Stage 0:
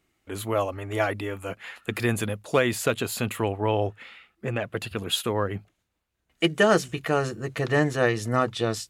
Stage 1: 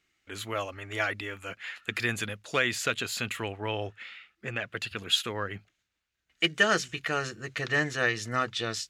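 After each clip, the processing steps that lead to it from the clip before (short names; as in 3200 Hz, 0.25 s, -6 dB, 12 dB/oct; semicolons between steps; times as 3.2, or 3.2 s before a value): band shelf 3100 Hz +10.5 dB 2.7 oct; gain -9 dB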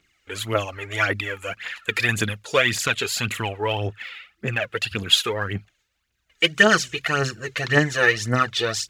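phaser 1.8 Hz, delay 2.5 ms, feedback 61%; gain +6 dB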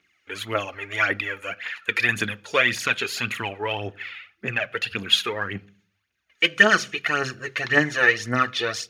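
reverb RT60 0.45 s, pre-delay 3 ms, DRR 16.5 dB; gain -5.5 dB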